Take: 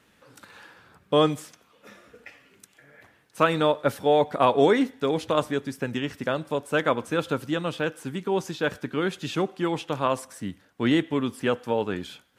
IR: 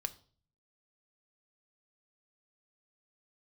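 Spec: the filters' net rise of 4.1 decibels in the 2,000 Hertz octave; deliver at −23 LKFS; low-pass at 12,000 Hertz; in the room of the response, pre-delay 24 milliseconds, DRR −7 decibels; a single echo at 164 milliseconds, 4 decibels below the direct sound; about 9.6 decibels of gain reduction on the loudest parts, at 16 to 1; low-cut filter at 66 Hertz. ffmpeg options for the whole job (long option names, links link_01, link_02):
-filter_complex "[0:a]highpass=66,lowpass=12000,equalizer=frequency=2000:width_type=o:gain=5.5,acompressor=threshold=-23dB:ratio=16,aecho=1:1:164:0.631,asplit=2[link_01][link_02];[1:a]atrim=start_sample=2205,adelay=24[link_03];[link_02][link_03]afir=irnorm=-1:irlink=0,volume=7.5dB[link_04];[link_01][link_04]amix=inputs=2:normalize=0,volume=-1.5dB"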